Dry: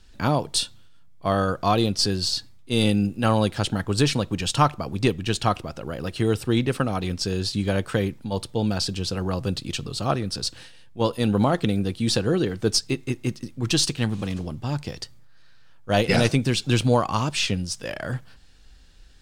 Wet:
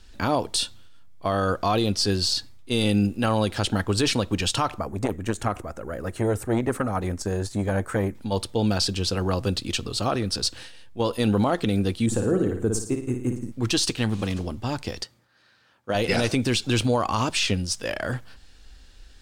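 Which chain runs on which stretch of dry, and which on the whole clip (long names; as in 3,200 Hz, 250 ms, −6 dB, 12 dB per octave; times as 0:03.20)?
0:04.79–0:08.15: flat-topped bell 3,700 Hz −13 dB 1.3 octaves + saturating transformer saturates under 500 Hz
0:12.06–0:13.52: drawn EQ curve 180 Hz 0 dB, 1,400 Hz −7 dB, 2,000 Hz −12 dB, 5,000 Hz −26 dB, 7,200 Hz −1 dB, 10,000 Hz −7 dB + flutter between parallel walls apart 9.6 metres, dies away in 0.51 s
0:15.03–0:15.95: high-pass filter 140 Hz + high-shelf EQ 3,900 Hz −5.5 dB
whole clip: parametric band 150 Hz −12 dB 0.38 octaves; brickwall limiter −16 dBFS; level +3 dB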